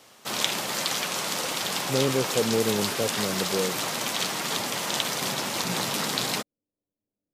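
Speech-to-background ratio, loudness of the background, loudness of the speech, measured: -1.5 dB, -27.0 LUFS, -28.5 LUFS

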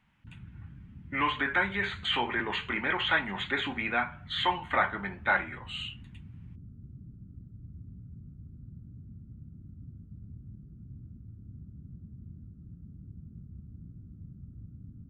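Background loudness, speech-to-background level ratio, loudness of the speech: -48.5 LUFS, 19.0 dB, -29.5 LUFS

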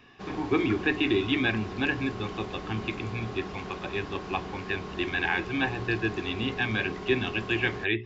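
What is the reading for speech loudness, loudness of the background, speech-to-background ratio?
-29.5 LUFS, -38.5 LUFS, 9.0 dB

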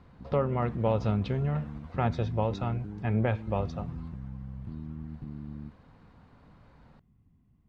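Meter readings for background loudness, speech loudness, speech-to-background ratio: -41.5 LUFS, -31.0 LUFS, 10.5 dB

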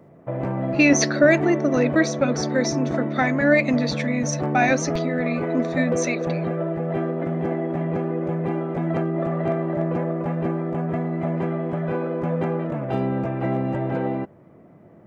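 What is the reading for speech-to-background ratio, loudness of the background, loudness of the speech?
3.5 dB, -25.5 LUFS, -22.0 LUFS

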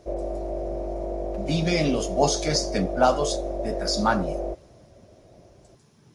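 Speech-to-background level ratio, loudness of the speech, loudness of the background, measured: 6.0 dB, -25.0 LUFS, -31.0 LUFS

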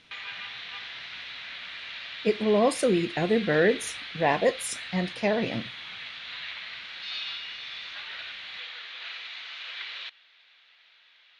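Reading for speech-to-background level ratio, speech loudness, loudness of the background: 10.5 dB, -26.0 LUFS, -36.5 LUFS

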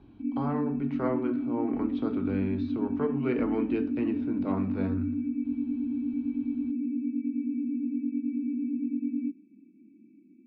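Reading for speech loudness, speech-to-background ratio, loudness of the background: -33.5 LUFS, -2.0 dB, -31.5 LUFS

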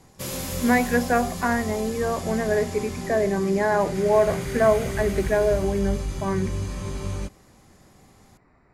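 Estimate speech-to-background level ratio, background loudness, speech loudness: 7.5 dB, -31.5 LUFS, -24.0 LUFS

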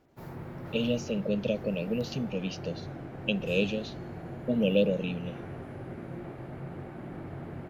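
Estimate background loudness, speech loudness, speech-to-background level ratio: -41.5 LUFS, -31.0 LUFS, 10.5 dB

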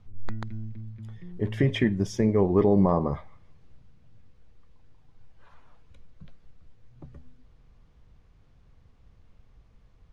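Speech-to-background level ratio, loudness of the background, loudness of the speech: 16.0 dB, -40.5 LUFS, -24.5 LUFS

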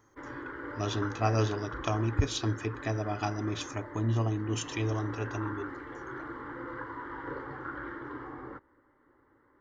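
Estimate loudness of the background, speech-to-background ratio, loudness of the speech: -40.5 LUFS, 8.0 dB, -32.5 LUFS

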